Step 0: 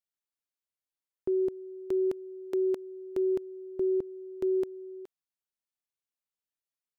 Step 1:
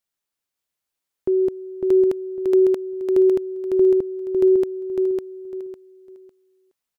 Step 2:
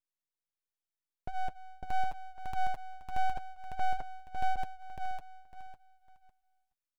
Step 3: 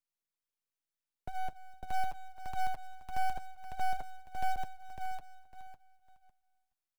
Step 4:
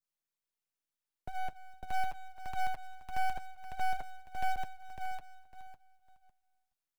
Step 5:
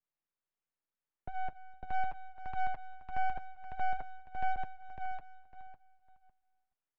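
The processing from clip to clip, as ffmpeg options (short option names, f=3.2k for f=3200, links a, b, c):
-af "aecho=1:1:553|1106|1659:0.631|0.158|0.0394,volume=8.5dB"
-af "flanger=delay=3.6:depth=5.7:regen=-41:speed=0.82:shape=sinusoidal,aeval=exprs='abs(val(0))':c=same,volume=-7.5dB"
-filter_complex "[0:a]acrossover=split=230|930[a][b][c];[c]acrusher=bits=2:mode=log:mix=0:aa=0.000001[d];[a][b][d]amix=inputs=3:normalize=0,asplit=2[e][f];[f]adelay=250.7,volume=-28dB,highshelf=f=4k:g=-5.64[g];[e][g]amix=inputs=2:normalize=0,volume=-2dB"
-af "adynamicequalizer=threshold=0.00178:dfrequency=2100:dqfactor=0.91:tfrequency=2100:tqfactor=0.91:attack=5:release=100:ratio=0.375:range=2.5:mode=boostabove:tftype=bell,volume=-1dB"
-af "lowpass=2.1k"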